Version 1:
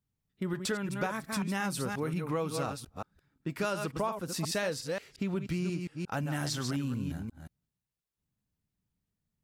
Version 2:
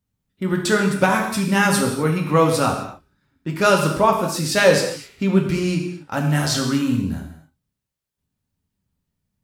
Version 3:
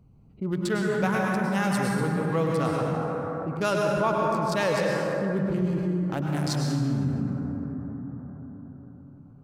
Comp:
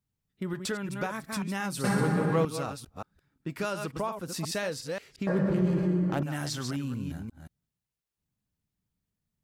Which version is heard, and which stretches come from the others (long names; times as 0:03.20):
1
0:01.84–0:02.45: punch in from 3
0:05.27–0:06.23: punch in from 3
not used: 2